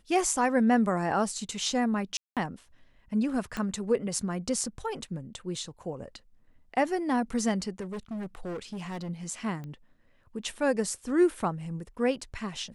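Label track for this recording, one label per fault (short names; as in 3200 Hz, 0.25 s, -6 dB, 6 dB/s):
2.170000	2.370000	gap 0.197 s
3.570000	3.570000	pop -19 dBFS
7.800000	9.100000	clipped -32.5 dBFS
9.640000	9.640000	pop -29 dBFS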